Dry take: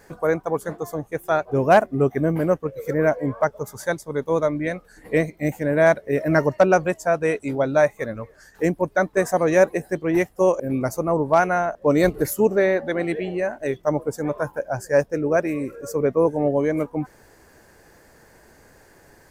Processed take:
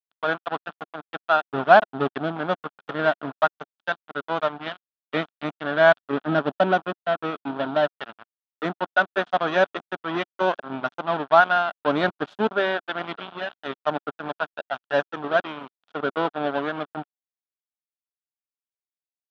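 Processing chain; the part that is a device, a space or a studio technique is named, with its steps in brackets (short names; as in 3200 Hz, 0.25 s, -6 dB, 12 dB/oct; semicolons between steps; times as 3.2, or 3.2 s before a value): 6–8.01 graphic EQ 250/1000/2000/8000 Hz +5/-4/-10/-12 dB; blown loudspeaker (crossover distortion -25.5 dBFS; speaker cabinet 220–3800 Hz, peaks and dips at 350 Hz -5 dB, 500 Hz -10 dB, 710 Hz +4 dB, 1400 Hz +8 dB, 2100 Hz -8 dB, 3400 Hz +8 dB); gain +1.5 dB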